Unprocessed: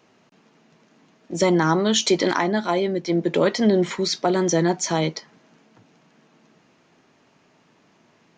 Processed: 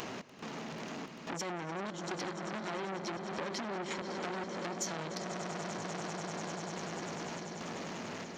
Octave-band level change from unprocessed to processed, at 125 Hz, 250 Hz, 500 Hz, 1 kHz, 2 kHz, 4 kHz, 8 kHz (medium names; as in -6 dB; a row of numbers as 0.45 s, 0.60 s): -16.0 dB, -17.5 dB, -17.5 dB, -12.0 dB, -11.0 dB, -15.5 dB, -13.5 dB